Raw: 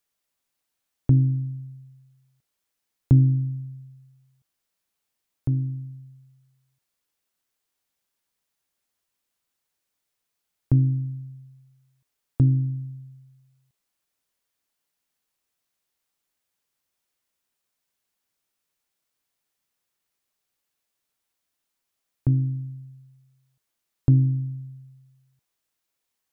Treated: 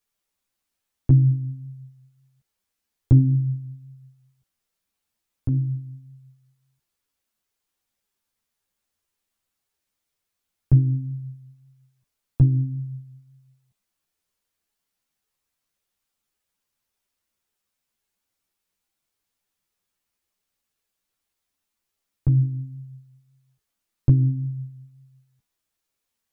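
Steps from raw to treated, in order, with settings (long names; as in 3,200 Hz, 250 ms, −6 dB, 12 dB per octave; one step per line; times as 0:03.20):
low-shelf EQ 160 Hz +6 dB
string-ensemble chorus
level +2.5 dB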